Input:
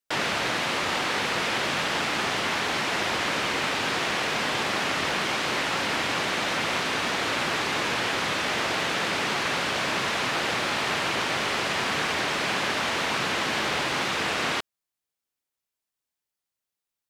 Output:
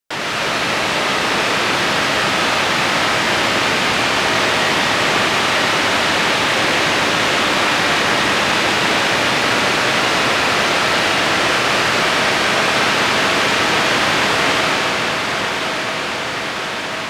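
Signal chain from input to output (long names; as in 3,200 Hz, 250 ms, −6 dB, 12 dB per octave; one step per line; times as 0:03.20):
feedback delay with all-pass diffusion 1,105 ms, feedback 76%, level −7 dB
comb and all-pass reverb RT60 4.5 s, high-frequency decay 0.95×, pre-delay 65 ms, DRR −4.5 dB
level +3.5 dB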